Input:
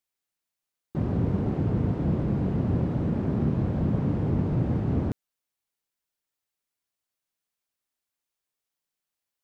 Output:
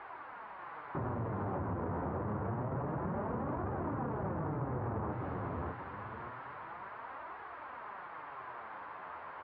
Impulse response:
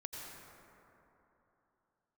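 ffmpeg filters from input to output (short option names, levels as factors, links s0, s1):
-filter_complex "[0:a]aeval=exprs='val(0)+0.5*0.0126*sgn(val(0))':c=same,equalizer=f=990:w=2.5:g=6.5,acrossover=split=640[s0][s1];[s1]acontrast=32[s2];[s0][s2]amix=inputs=2:normalize=0,equalizer=f=190:w=0.89:g=-8.5,aresample=11025,asoftclip=type=tanh:threshold=0.02,aresample=44100,highpass=84,aecho=1:1:589|1178|1767|2356:0.596|0.167|0.0467|0.0131,flanger=delay=2.3:depth=9.8:regen=44:speed=0.27:shape=triangular,lowpass=f=1500:w=0.5412,lowpass=f=1500:w=1.3066,flanger=delay=5.7:depth=8.9:regen=-75:speed=0.74:shape=triangular,acompressor=threshold=0.00562:ratio=6,volume=3.98"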